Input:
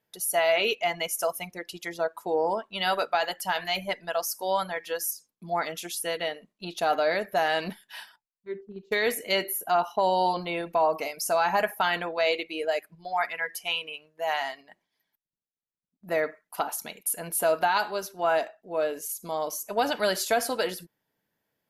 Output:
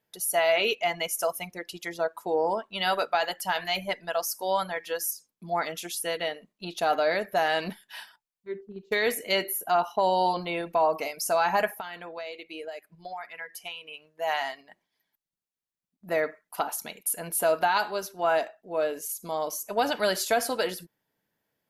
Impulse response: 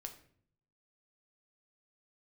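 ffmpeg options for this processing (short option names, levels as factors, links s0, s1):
-filter_complex "[0:a]asettb=1/sr,asplit=3[s0][s1][s2];[s0]atrim=end=11.674[s3];[s1]atrim=start=11.67:end=14.1,asetpts=PTS-STARTPTS,afade=t=in:d=0.004:c=qsin,afade=t=out:st=2.426:d=0.004:c=qsin,acompressor=threshold=0.0158:ratio=6[s4];[s2]atrim=start=14.096[s5];[s3][s4]acrossfade=d=0.004:c1=hsin:c2=qsin[s6];[s6][s5]acrossfade=d=0.004:c1=qsin:c2=hsin"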